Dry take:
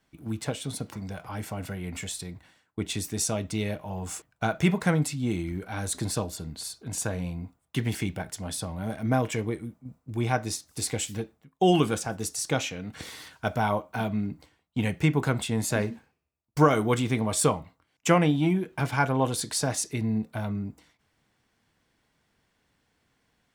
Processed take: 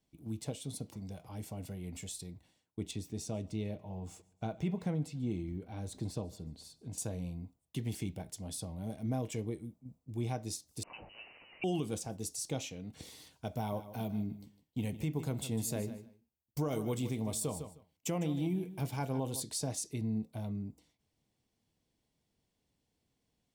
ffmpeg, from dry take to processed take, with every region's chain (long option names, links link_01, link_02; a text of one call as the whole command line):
ffmpeg -i in.wav -filter_complex "[0:a]asettb=1/sr,asplit=3[link_01][link_02][link_03];[link_01]atrim=end=2.914[link_04];[link_02]atrim=start=2.91:end=6.98,asetpts=PTS-STARTPTS,afade=type=in:duration=0.004:curve=qsin,afade=type=out:start_time=4.066:duration=0.004:curve=qsin,equalizer=frequency=11000:width=0.41:gain=-13,aecho=1:1:141|282|423:0.0631|0.0284|0.0128,atrim=end_sample=179487[link_05];[link_03]atrim=start=6.976[link_06];[link_04][link_05]acrossfade=duration=0.004:curve1=hsin:curve2=qsin[link_07];[link_07][link_06]acrossfade=duration=0.004:curve1=qsin:curve2=hsin,asettb=1/sr,asplit=3[link_08][link_09][link_10];[link_08]atrim=end=10.834[link_11];[link_09]atrim=start=10.83:end=11.64,asetpts=PTS-STARTPTS,afade=type=in:duration=0.004:curve=qsin,afade=type=out:start_time=0.806:duration=0.004:curve=qsin,aeval=exprs='val(0)+0.5*0.0355*sgn(val(0))':channel_layout=same,highpass=frequency=1000:poles=1,lowpass=frequency=2600:width_type=q:width=0.5098,lowpass=frequency=2600:width_type=q:width=0.6013,lowpass=frequency=2600:width_type=q:width=0.9,lowpass=frequency=2600:width_type=q:width=2.563,afreqshift=-3100[link_12];[link_10]atrim=start=11.636[link_13];[link_11][link_12]acrossfade=duration=0.004:curve1=hsin:curve2=qsin[link_14];[link_14][link_13]acrossfade=duration=0.004:curve1=qsin:curve2=hsin,asettb=1/sr,asplit=3[link_15][link_16][link_17];[link_15]atrim=end=13.564[link_18];[link_16]atrim=start=13.56:end=19.43,asetpts=PTS-STARTPTS,afade=type=in:duration=0.004:curve=qsin,afade=type=out:start_time=5.866:duration=0.004:curve=qsin,equalizer=frequency=15000:width_type=o:width=0.36:gain=13,aecho=1:1:154|308:0.2|0.0319,atrim=end_sample=258867[link_19];[link_17]atrim=start=19.426[link_20];[link_18][link_19]acrossfade=duration=0.004:curve1=hsin:curve2=qsin[link_21];[link_21][link_20]acrossfade=duration=0.004:curve1=qsin:curve2=hsin,equalizer=frequency=1500:width_type=o:width=1.3:gain=-15,alimiter=limit=-18.5dB:level=0:latency=1:release=129,volume=-7dB" out.wav